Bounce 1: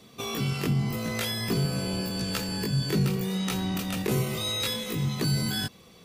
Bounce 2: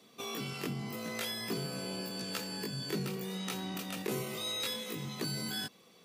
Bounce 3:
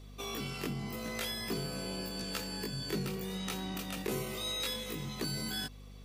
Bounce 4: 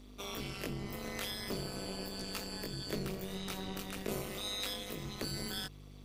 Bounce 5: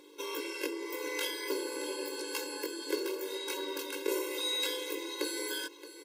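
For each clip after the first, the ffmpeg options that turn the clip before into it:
-af "highpass=220,volume=-6.5dB"
-af "aeval=exprs='val(0)+0.00355*(sin(2*PI*50*n/s)+sin(2*PI*2*50*n/s)/2+sin(2*PI*3*50*n/s)/3+sin(2*PI*4*50*n/s)/4+sin(2*PI*5*50*n/s)/5)':c=same"
-af "tremolo=f=200:d=0.947,volume=1.5dB"
-af "aecho=1:1:623:0.2,afftfilt=real='re*eq(mod(floor(b*sr/1024/280),2),1)':imag='im*eq(mod(floor(b*sr/1024/280),2),1)':win_size=1024:overlap=0.75,volume=8dB"

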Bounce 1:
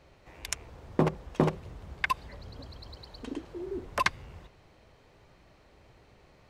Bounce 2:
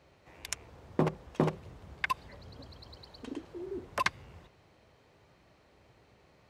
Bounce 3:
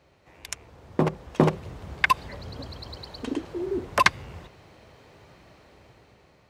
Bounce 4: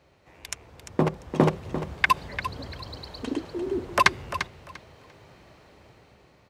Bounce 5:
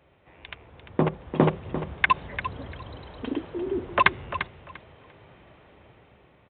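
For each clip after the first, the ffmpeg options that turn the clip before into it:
-af "highpass=70,volume=-3dB"
-af "dynaudnorm=f=380:g=7:m=11dB,volume=1.5dB"
-af "aecho=1:1:346|692|1038:0.282|0.0535|0.0102"
-af "aresample=8000,aresample=44100"

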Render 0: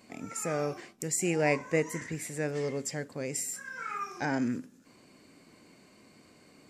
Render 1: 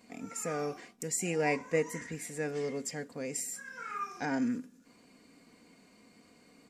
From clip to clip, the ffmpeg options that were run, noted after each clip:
-af "aecho=1:1:4.2:0.47,volume=-3.5dB"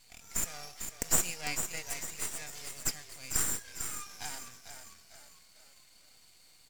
-filter_complex "[0:a]firequalizer=gain_entry='entry(110,0);entry(250,-27);entry(750,0);entry(1200,-4);entry(3500,15)':delay=0.05:min_phase=1,asplit=6[a][b][c][d][e][f];[b]adelay=449,afreqshift=-38,volume=-8dB[g];[c]adelay=898,afreqshift=-76,volume=-14.9dB[h];[d]adelay=1347,afreqshift=-114,volume=-21.9dB[i];[e]adelay=1796,afreqshift=-152,volume=-28.8dB[j];[f]adelay=2245,afreqshift=-190,volume=-35.7dB[k];[a][g][h][i][j][k]amix=inputs=6:normalize=0,aeval=exprs='max(val(0),0)':c=same,volume=-3.5dB"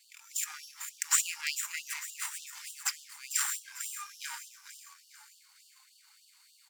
-filter_complex "[0:a]asplit=2[a][b];[b]adynamicsmooth=sensitivity=7.5:basefreq=1.9k,volume=2dB[c];[a][c]amix=inputs=2:normalize=0,afftfilt=real='re*gte(b*sr/1024,770*pow(2800/770,0.5+0.5*sin(2*PI*3.4*pts/sr)))':imag='im*gte(b*sr/1024,770*pow(2800/770,0.5+0.5*sin(2*PI*3.4*pts/sr)))':win_size=1024:overlap=0.75"

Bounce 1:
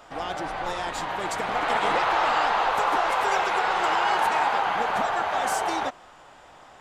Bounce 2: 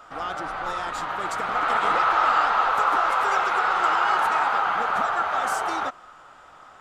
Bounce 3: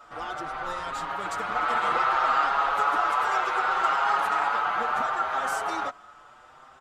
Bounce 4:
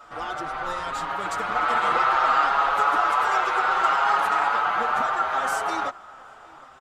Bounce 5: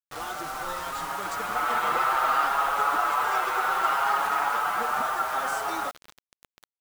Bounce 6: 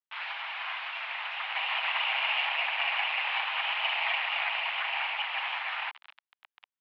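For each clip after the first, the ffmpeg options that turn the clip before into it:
-af "equalizer=f=1.3k:t=o:w=0.37:g=13,volume=-3dB"
-filter_complex "[0:a]asplit=2[a][b];[b]adelay=6.5,afreqshift=0.66[c];[a][c]amix=inputs=2:normalize=1"
-filter_complex "[0:a]asplit=2[a][b];[b]adelay=758,volume=-22dB,highshelf=f=4k:g=-17.1[c];[a][c]amix=inputs=2:normalize=0,volume=3dB"
-af "acrusher=bits=5:mix=0:aa=0.000001,volume=-3.5dB"
-af "aeval=exprs='abs(val(0))':c=same,highpass=f=580:t=q:w=0.5412,highpass=f=580:t=q:w=1.307,lowpass=f=3.3k:t=q:w=0.5176,lowpass=f=3.3k:t=q:w=0.7071,lowpass=f=3.3k:t=q:w=1.932,afreqshift=240,adynamicequalizer=threshold=0.01:dfrequency=2600:dqfactor=0.7:tfrequency=2600:tqfactor=0.7:attack=5:release=100:ratio=0.375:range=2:mode=cutabove:tftype=highshelf,volume=3dB"

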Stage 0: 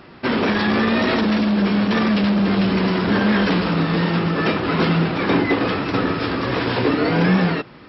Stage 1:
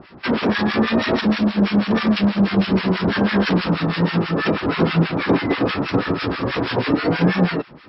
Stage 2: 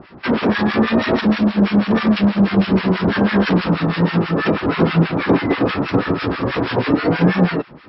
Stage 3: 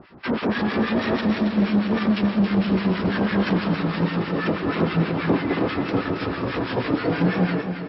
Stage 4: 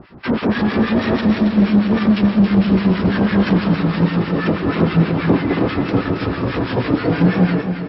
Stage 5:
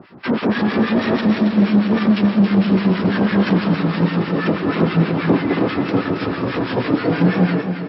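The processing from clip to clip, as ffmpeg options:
-filter_complex "[0:a]acrossover=split=1100[a][b];[a]aeval=exprs='val(0)*(1-1/2+1/2*cos(2*PI*6.2*n/s))':c=same[c];[b]aeval=exprs='val(0)*(1-1/2-1/2*cos(2*PI*6.2*n/s))':c=same[d];[c][d]amix=inputs=2:normalize=0,volume=4dB"
-af "highshelf=f=4.4k:g=-9,volume=2.5dB"
-af "aecho=1:1:275|550|825|1100|1375:0.422|0.173|0.0709|0.0291|0.0119,volume=-6.5dB"
-af "lowshelf=f=200:g=7.5,volume=3dB"
-af "highpass=140"

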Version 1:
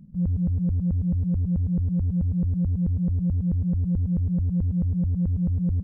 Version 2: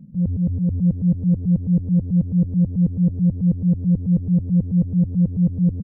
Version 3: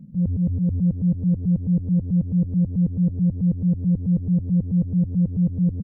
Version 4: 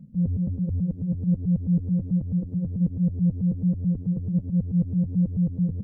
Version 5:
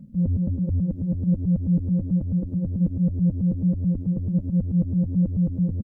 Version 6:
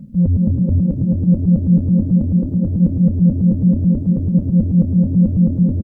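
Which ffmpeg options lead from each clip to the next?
-filter_complex "[0:a]equalizer=f=125:t=o:w=1:g=10,equalizer=f=250:t=o:w=1:g=9,equalizer=f=500:t=o:w=1:g=11,asplit=2[a][b];[b]aecho=0:1:646:0.501[c];[a][c]amix=inputs=2:normalize=0,volume=-6dB"
-af "acompressor=threshold=-18dB:ratio=2"
-af "flanger=delay=1.5:depth=8:regen=-44:speed=1.3:shape=sinusoidal,volume=1dB"
-af "aecho=1:1:3.4:0.38,volume=4dB"
-filter_complex "[0:a]asplit=5[a][b][c][d][e];[b]adelay=246,afreqshift=38,volume=-10.5dB[f];[c]adelay=492,afreqshift=76,volume=-18.2dB[g];[d]adelay=738,afreqshift=114,volume=-26dB[h];[e]adelay=984,afreqshift=152,volume=-33.7dB[i];[a][f][g][h][i]amix=inputs=5:normalize=0,volume=8dB"

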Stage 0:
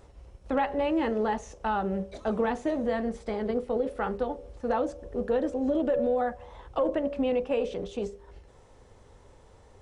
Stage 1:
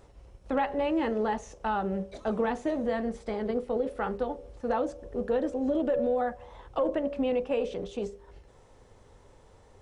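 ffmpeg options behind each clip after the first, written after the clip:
-af "equalizer=f=68:w=5.1:g=-6,volume=-1dB"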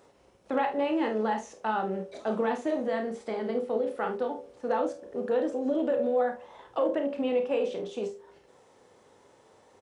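-filter_complex "[0:a]highpass=220,asplit=2[a][b];[b]aecho=0:1:32|50|74:0.376|0.299|0.158[c];[a][c]amix=inputs=2:normalize=0"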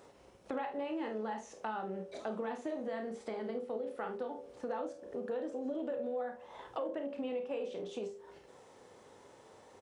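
-af "acompressor=threshold=-42dB:ratio=2.5,volume=1dB"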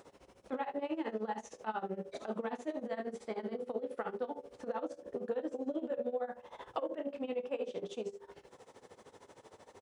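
-af "tremolo=f=13:d=0.87,volume=4dB"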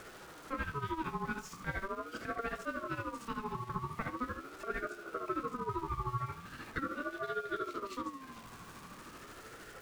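-af "aeval=exprs='val(0)+0.5*0.00473*sgn(val(0))':c=same,aeval=exprs='val(0)*sin(2*PI*770*n/s+770*0.2/0.41*sin(2*PI*0.41*n/s))':c=same,volume=1.5dB"

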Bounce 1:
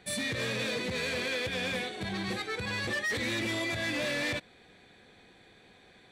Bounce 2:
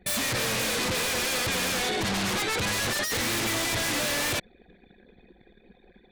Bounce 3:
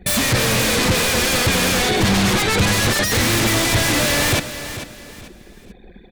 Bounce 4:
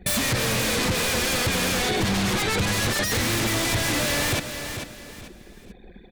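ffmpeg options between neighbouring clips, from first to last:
-filter_complex "[0:a]anlmdn=0.00398,asplit=2[a][b];[b]aeval=exprs='0.075*sin(PI/2*5.62*val(0)/0.075)':c=same,volume=-4dB[c];[a][c]amix=inputs=2:normalize=0"
-af "lowshelf=f=220:g=8.5,aecho=1:1:442|884|1326:0.251|0.0779|0.0241,volume=8.5dB"
-af "acompressor=threshold=-19dB:ratio=2.5,volume=-3dB"

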